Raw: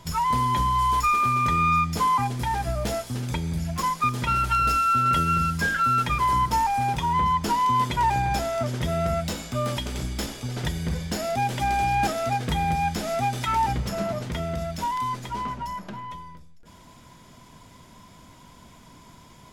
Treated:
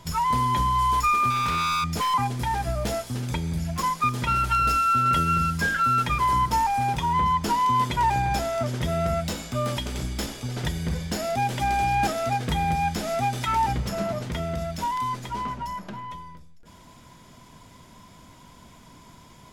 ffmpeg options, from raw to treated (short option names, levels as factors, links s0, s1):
-filter_complex "[0:a]asettb=1/sr,asplit=3[s0][s1][s2];[s0]atrim=end=1.304[s3];[s1]atrim=start=1.3:end=2.14,asetpts=PTS-STARTPTS,afade=t=in:d=0.004:c=qsin,afade=t=out:st=0.836:d=0.004:c=qsin,aeval=exprs='0.1*(abs(mod(val(0)/0.1+3,4)-2)-1)':c=same[s4];[s2]atrim=start=2.136[s5];[s3][s4]acrossfade=d=0.004:c1=hsin:c2=qsin[s6];[s6][s5]acrossfade=d=0.004:c1=qsin:c2=hsin"